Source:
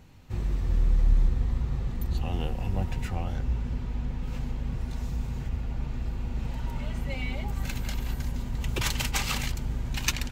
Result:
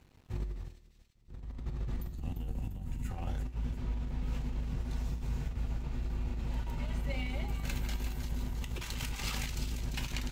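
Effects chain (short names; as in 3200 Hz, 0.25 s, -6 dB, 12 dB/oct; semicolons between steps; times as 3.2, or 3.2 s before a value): spectral gain 2.07–3.11, 330–6300 Hz -9 dB; negative-ratio compressor -30 dBFS, ratio -0.5; resonator 51 Hz, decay 0.42 s, harmonics odd, mix 60%; crossover distortion -57.5 dBFS; on a send: thin delay 0.346 s, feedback 43%, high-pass 3000 Hz, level -6.5 dB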